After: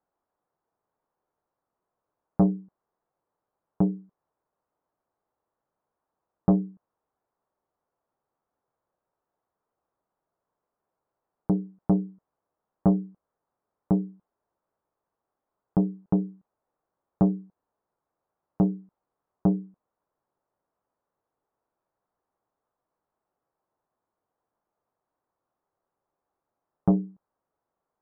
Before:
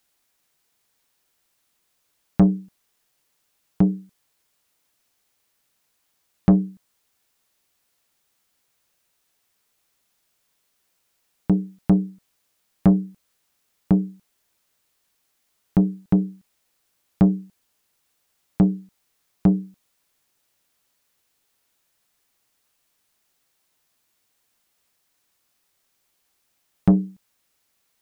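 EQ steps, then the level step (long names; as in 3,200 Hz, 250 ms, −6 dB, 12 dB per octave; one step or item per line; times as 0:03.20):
low-pass filter 1,100 Hz 24 dB per octave
low-shelf EQ 150 Hz −9.5 dB
parametric band 240 Hz −3.5 dB 0.77 octaves
0.0 dB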